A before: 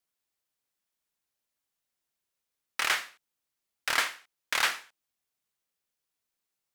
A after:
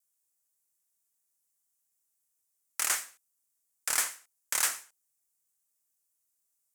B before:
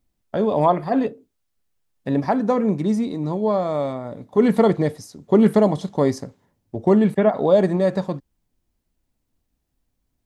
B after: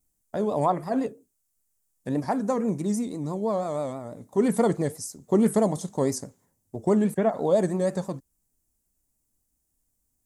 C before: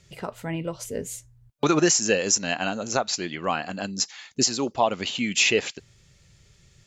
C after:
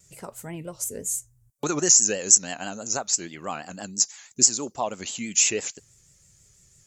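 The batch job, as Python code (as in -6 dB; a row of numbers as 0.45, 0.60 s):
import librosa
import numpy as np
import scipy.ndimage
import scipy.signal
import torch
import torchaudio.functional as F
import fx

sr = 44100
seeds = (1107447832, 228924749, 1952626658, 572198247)

y = fx.vibrato(x, sr, rate_hz=6.1, depth_cents=87.0)
y = fx.high_shelf_res(y, sr, hz=5400.0, db=13.5, q=1.5)
y = y * librosa.db_to_amplitude(-6.0)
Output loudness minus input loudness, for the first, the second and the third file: -1.0, -6.0, +2.5 LU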